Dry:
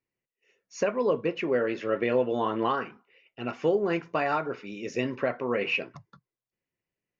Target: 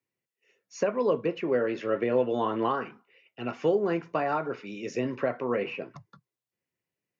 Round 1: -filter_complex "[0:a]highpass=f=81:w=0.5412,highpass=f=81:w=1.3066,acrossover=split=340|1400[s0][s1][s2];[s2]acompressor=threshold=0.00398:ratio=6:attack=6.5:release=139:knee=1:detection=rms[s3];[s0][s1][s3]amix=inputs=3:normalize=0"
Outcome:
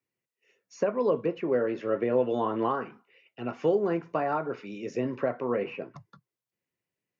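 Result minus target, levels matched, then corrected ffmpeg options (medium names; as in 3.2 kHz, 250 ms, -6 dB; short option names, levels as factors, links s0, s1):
compression: peak gain reduction +7 dB
-filter_complex "[0:a]highpass=f=81:w=0.5412,highpass=f=81:w=1.3066,acrossover=split=340|1400[s0][s1][s2];[s2]acompressor=threshold=0.0106:ratio=6:attack=6.5:release=139:knee=1:detection=rms[s3];[s0][s1][s3]amix=inputs=3:normalize=0"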